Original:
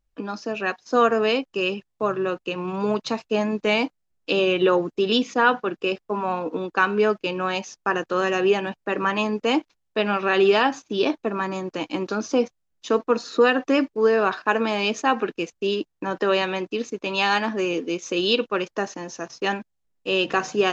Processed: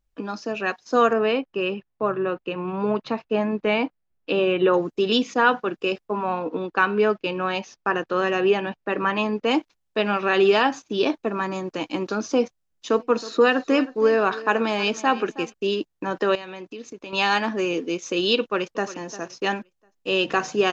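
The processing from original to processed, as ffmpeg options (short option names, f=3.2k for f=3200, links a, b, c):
-filter_complex "[0:a]asettb=1/sr,asplit=3[a][b][c];[a]atrim=end=1.134[d];[b]atrim=start=1.13:end=4.74,asetpts=PTS-STARTPTS,afade=t=in:d=0.004:c=qsin,afade=t=out:st=3.606:d=0.004:c=qsin,lowpass=2.6k[e];[c]atrim=start=4.736[f];[d][e]acrossfade=d=0.004:c1=hsin:c2=qsin[g];[g][f]acrossfade=d=0.004:c1=qsin:c2=hsin,asettb=1/sr,asplit=3[h][i][j];[h]atrim=end=6.084[k];[i]atrim=start=6.08:end=9.51,asetpts=PTS-STARTPTS,afade=t=in:d=0.004:c=qsin,afade=t=out:st=3.426:d=0.004:c=qsin,lowpass=4.4k[l];[j]atrim=start=9.506[m];[k][l]acrossfade=d=0.004:c1=hsin:c2=qsin[n];[n][m]acrossfade=d=0.004:c1=qsin:c2=hsin,asplit=3[o][p][q];[o]afade=t=out:st=12.92:d=0.02[r];[p]aecho=1:1:319|638:0.141|0.0212,afade=t=in:st=12.92:d=0.02,afade=t=out:st=15.52:d=0.02[s];[q]afade=t=in:st=15.52:d=0.02[t];[r][s][t]amix=inputs=3:normalize=0,asettb=1/sr,asplit=3[u][v][w];[u]atrim=end=16.354[x];[v]atrim=start=16.35:end=17.13,asetpts=PTS-STARTPTS,afade=t=in:d=0.004:c=qsin,afade=t=out:st=0.776:d=0.004:c=qsin,acompressor=threshold=-36dB:ratio=3:attack=3.2:release=140:knee=1:detection=peak[y];[w]atrim=start=17.126[z];[x][y]acrossfade=d=0.004:c1=hsin:c2=qsin[aa];[aa][z]acrossfade=d=0.004:c1=qsin:c2=hsin,asplit=2[ab][ac];[ac]afade=t=in:st=18.4:d=0.01,afade=t=out:st=18.89:d=0.01,aecho=0:1:350|700|1050:0.177828|0.0533484|0.0160045[ad];[ab][ad]amix=inputs=2:normalize=0"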